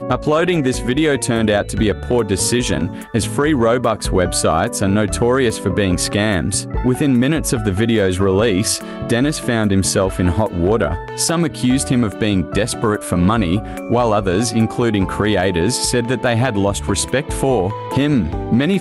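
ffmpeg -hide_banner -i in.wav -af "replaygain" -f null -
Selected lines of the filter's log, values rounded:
track_gain = -1.2 dB
track_peak = 0.337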